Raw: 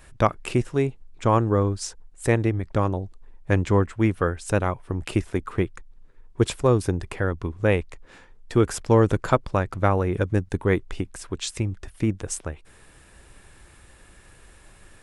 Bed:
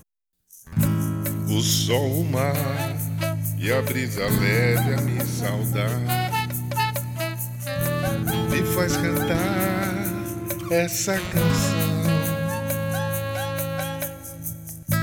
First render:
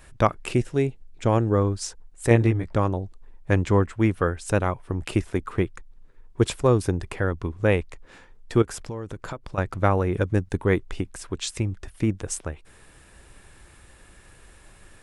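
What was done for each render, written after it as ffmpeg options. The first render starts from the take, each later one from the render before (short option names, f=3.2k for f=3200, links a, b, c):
-filter_complex "[0:a]asettb=1/sr,asplit=3[a][b][c];[a]atrim=end=0.534[d];[b]atrim=start=0.53:end=1.54,asetpts=PTS-STARTPTS,afade=t=in:d=0.004:c=qsin,afade=t=out:st=1.006:d=0.004:c=qsin,equalizer=f=1.1k:w=2.6:g=-8[e];[c]atrim=start=1.536[f];[d][e]acrossfade=d=0.004:c1=hsin:c2=qsin[g];[g][f]acrossfade=d=0.004:c1=qsin:c2=hsin,asettb=1/sr,asplit=3[h][i][j];[h]atrim=end=2.294[k];[i]atrim=start=2.29:end=2.74,asetpts=PTS-STARTPTS,afade=t=in:d=0.004:c=qsin,afade=t=out:st=0.446:d=0.004:c=qsin,asplit=2[l][m];[m]adelay=17,volume=-3dB[n];[l][n]amix=inputs=2:normalize=0,atrim=end_sample=19845[o];[j]atrim=start=2.736[p];[k][o]acrossfade=d=0.004:c1=hsin:c2=qsin[q];[q][p]acrossfade=d=0.004:c1=qsin:c2=hsin,asettb=1/sr,asplit=3[r][s][t];[r]atrim=end=8.624[u];[s]atrim=start=8.62:end=9.58,asetpts=PTS-STARTPTS,afade=t=in:d=0.004:c=qsin,afade=t=out:st=0.956:d=0.004:c=qsin,acompressor=threshold=-31dB:ratio=5:attack=3.2:release=140:knee=1:detection=peak[v];[t]atrim=start=9.576[w];[u][v]acrossfade=d=0.004:c1=hsin:c2=qsin[x];[x][w]acrossfade=d=0.004:c1=qsin:c2=hsin"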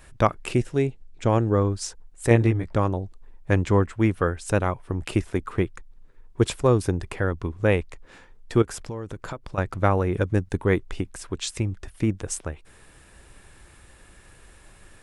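-filter_complex "[0:a]asettb=1/sr,asplit=3[a][b][c];[a]atrim=end=0.794[d];[b]atrim=start=0.79:end=1.69,asetpts=PTS-STARTPTS,afade=t=in:d=0.004:c=qsin,afade=t=out:st=0.896:d=0.004:c=qsin,lowpass=f=9.7k:w=0.5412,lowpass=f=9.7k:w=1.3066[e];[c]atrim=start=1.686[f];[d][e]acrossfade=d=0.004:c1=hsin:c2=qsin[g];[g][f]acrossfade=d=0.004:c1=qsin:c2=hsin"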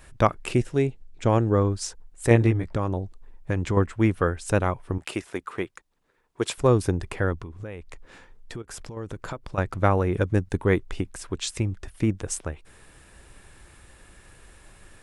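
-filter_complex "[0:a]asettb=1/sr,asplit=3[a][b][c];[a]atrim=end=2.674[d];[b]atrim=start=2.67:end=3.77,asetpts=PTS-STARTPTS,afade=t=in:d=0.004:c=qsin,afade=t=out:st=1.096:d=0.004:c=qsin,acompressor=threshold=-20dB:ratio=4:attack=3.2:release=140:knee=1:detection=peak[e];[c]atrim=start=3.766[f];[d][e]acrossfade=d=0.004:c1=hsin:c2=qsin[g];[g][f]acrossfade=d=0.004:c1=qsin:c2=hsin,asettb=1/sr,asplit=3[h][i][j];[h]atrim=end=4.984[k];[i]atrim=start=4.98:end=6.58,asetpts=PTS-STARTPTS,afade=t=in:d=0.004:c=qsin,afade=t=out:st=1.596:d=0.004:c=qsin,highpass=f=540:p=1[l];[j]atrim=start=6.576[m];[k][l]acrossfade=d=0.004:c1=hsin:c2=qsin[n];[n][m]acrossfade=d=0.004:c1=qsin:c2=hsin,asettb=1/sr,asplit=3[o][p][q];[o]atrim=end=7.424[r];[p]atrim=start=7.42:end=8.97,asetpts=PTS-STARTPTS,afade=t=in:d=0.004:c=qsin,afade=t=out:st=1.546:d=0.004:c=qsin,acompressor=threshold=-34dB:ratio=5:attack=3.2:release=140:knee=1:detection=peak[s];[q]atrim=start=8.966[t];[r][s]acrossfade=d=0.004:c1=hsin:c2=qsin[u];[u][t]acrossfade=d=0.004:c1=qsin:c2=hsin"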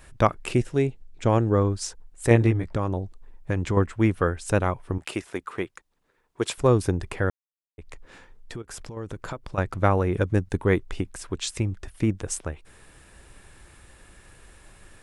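-filter_complex "[0:a]asplit=3[a][b][c];[a]atrim=end=7.3,asetpts=PTS-STARTPTS,afade=t=out:st=7.296:d=0.004:c=hsin[d];[b]atrim=start=7.3:end=7.78,asetpts=PTS-STARTPTS,volume=0[e];[c]atrim=start=7.78,asetpts=PTS-STARTPTS,afade=t=in:d=0.004:c=hsin[f];[d][e][f]concat=n=3:v=0:a=1"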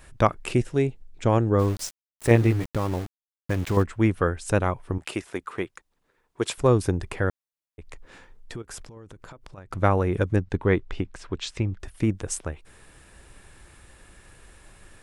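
-filter_complex "[0:a]asplit=3[a][b][c];[a]afade=t=out:st=1.58:d=0.02[d];[b]aeval=exprs='val(0)*gte(abs(val(0)),0.0224)':c=same,afade=t=in:st=1.58:d=0.02,afade=t=out:st=3.82:d=0.02[e];[c]afade=t=in:st=3.82:d=0.02[f];[d][e][f]amix=inputs=3:normalize=0,asettb=1/sr,asplit=3[g][h][i];[g]atrim=end=8.834[j];[h]atrim=start=8.83:end=9.71,asetpts=PTS-STARTPTS,afade=t=in:d=0.004:c=qsin,afade=t=out:st=0.876:d=0.004:c=qsin,acompressor=threshold=-41dB:ratio=5:attack=3.2:release=140:knee=1:detection=peak[k];[i]atrim=start=9.706[l];[j][k]acrossfade=d=0.004:c1=hsin:c2=qsin[m];[m][l]acrossfade=d=0.004:c1=qsin:c2=hsin,asettb=1/sr,asplit=3[n][o][p];[n]atrim=end=10.364[q];[o]atrim=start=10.36:end=11.8,asetpts=PTS-STARTPTS,afade=t=in:d=0.004:c=qsin,afade=t=out:st=1.436:d=0.004:c=qsin,lowpass=4.7k[r];[p]atrim=start=11.796[s];[q][r]acrossfade=d=0.004:c1=hsin:c2=qsin[t];[t][s]acrossfade=d=0.004:c1=qsin:c2=hsin"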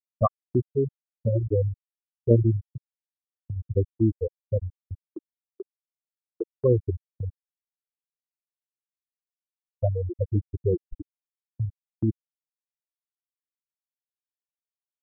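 -af "afftfilt=real='re*gte(hypot(re,im),0.562)':imag='im*gte(hypot(re,im),0.562)':win_size=1024:overlap=0.75,agate=range=-31dB:threshold=-42dB:ratio=16:detection=peak"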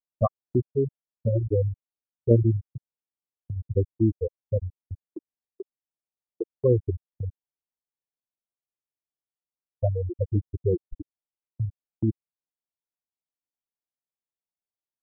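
-af "lowpass=f=1k:w=0.5412,lowpass=f=1k:w=1.3066"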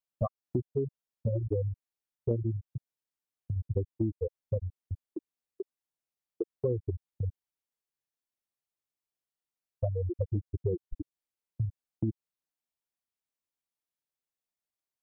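-af "acompressor=threshold=-27dB:ratio=5"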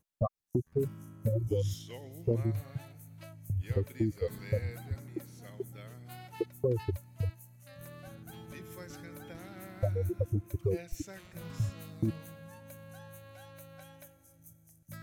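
-filter_complex "[1:a]volume=-24.5dB[a];[0:a][a]amix=inputs=2:normalize=0"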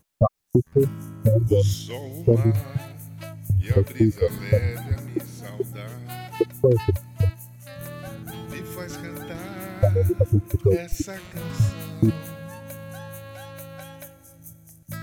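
-af "volume=12dB"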